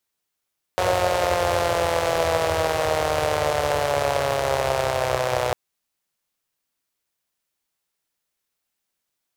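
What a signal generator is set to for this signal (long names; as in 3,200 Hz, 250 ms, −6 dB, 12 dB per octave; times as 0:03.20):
pulse-train model of a four-cylinder engine, changing speed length 4.75 s, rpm 5,500, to 3,700, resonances 90/570 Hz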